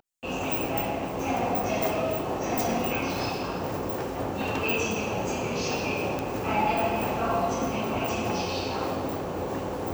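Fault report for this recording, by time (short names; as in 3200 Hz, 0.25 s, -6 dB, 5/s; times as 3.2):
6.19 pop -15 dBFS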